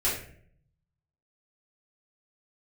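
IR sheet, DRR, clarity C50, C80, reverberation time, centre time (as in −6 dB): −9.5 dB, 4.0 dB, 8.5 dB, 0.60 s, 40 ms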